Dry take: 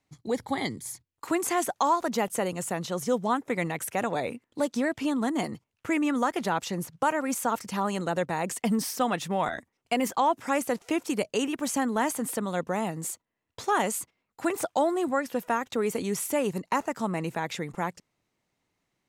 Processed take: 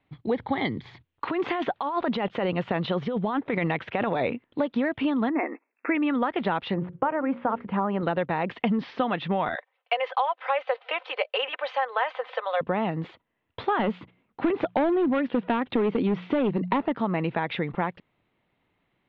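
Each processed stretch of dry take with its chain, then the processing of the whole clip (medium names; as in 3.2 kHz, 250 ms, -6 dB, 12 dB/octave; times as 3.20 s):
0.76–4.35 s: compressor with a negative ratio -30 dBFS + treble shelf 8.4 kHz +9.5 dB
5.29–5.95 s: brick-wall FIR band-pass 240–2700 Hz + peaking EQ 1.9 kHz +4.5 dB 0.6 oct
6.74–8.03 s: low-pass 1.5 kHz + hum notches 60/120/180/240/300/360/420/480/540 Hz
9.55–12.61 s: steep high-pass 500 Hz 48 dB/octave + comb 3.9 ms, depth 50%
13.79–16.98 s: peaking EQ 240 Hz +8.5 dB 1.9 oct + hum notches 60/120/180 Hz + hard clipper -19 dBFS
whole clip: steep low-pass 3.6 kHz 48 dB/octave; compression, threshold -28 dBFS; trim +6.5 dB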